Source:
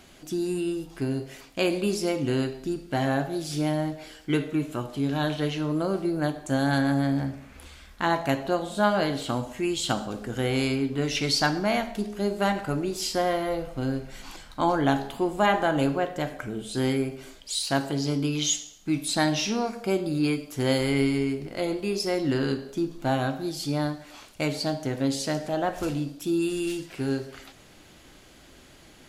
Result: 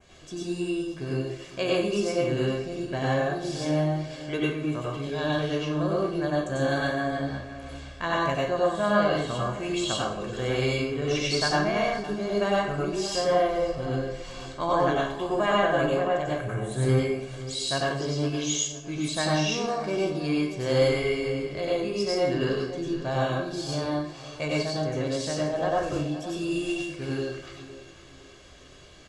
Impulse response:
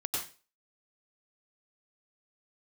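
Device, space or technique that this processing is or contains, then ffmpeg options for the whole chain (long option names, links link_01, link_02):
microphone above a desk: -filter_complex "[0:a]asettb=1/sr,asplit=3[link_01][link_02][link_03];[link_01]atrim=end=16.274[link_04];[link_02]atrim=start=16.27:end=16.89,asetpts=PTS-STARTPTS,afade=type=in:duration=0.004:curve=qsin,afade=type=out:start_time=0.616:duration=0.004:curve=qsin,equalizer=frequency=125:width_type=o:width=0.33:gain=12,equalizer=frequency=3150:width_type=o:width=0.33:gain=-11,equalizer=frequency=5000:width_type=o:width=0.33:gain=-12,equalizer=frequency=10000:width_type=o:width=0.33:gain=11[link_05];[link_03]atrim=start=16.886[link_06];[link_04][link_05]acrossfade=duration=0.004:curve1=hsin:curve2=qsin[link_07];[link_07][link_06]acrossfade=duration=0.004:curve1=qsin:curve2=hsin,aecho=1:1:1.8:0.52[link_08];[1:a]atrim=start_sample=2205[link_09];[link_08][link_09]afir=irnorm=-1:irlink=0,asplit=2[link_10][link_11];[link_11]adelay=512,lowpass=frequency=4200:poles=1,volume=-14.5dB,asplit=2[link_12][link_13];[link_13]adelay=512,lowpass=frequency=4200:poles=1,volume=0.36,asplit=2[link_14][link_15];[link_15]adelay=512,lowpass=frequency=4200:poles=1,volume=0.36[link_16];[link_10][link_12][link_14][link_16]amix=inputs=4:normalize=0,adynamicequalizer=threshold=0.0126:dfrequency=4200:dqfactor=0.9:tfrequency=4200:tqfactor=0.9:attack=5:release=100:ratio=0.375:range=2.5:mode=cutabove:tftype=bell,lowpass=frequency=8100:width=0.5412,lowpass=frequency=8100:width=1.3066,volume=-4dB"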